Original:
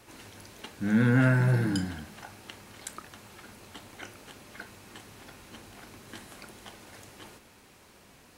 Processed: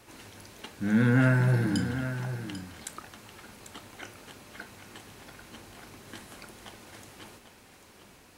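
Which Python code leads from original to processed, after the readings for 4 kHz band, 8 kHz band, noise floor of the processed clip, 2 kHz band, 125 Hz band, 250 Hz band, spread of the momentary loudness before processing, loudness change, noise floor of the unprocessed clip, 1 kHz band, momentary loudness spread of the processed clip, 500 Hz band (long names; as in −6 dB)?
+0.5 dB, +0.5 dB, −56 dBFS, +0.5 dB, +0.5 dB, +0.5 dB, 23 LU, −1.0 dB, −57 dBFS, +0.5 dB, 24 LU, +0.5 dB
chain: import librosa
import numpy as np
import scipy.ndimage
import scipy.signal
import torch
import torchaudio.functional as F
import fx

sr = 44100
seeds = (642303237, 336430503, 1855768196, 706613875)

y = x + 10.0 ** (-10.5 / 20.0) * np.pad(x, (int(793 * sr / 1000.0), 0))[:len(x)]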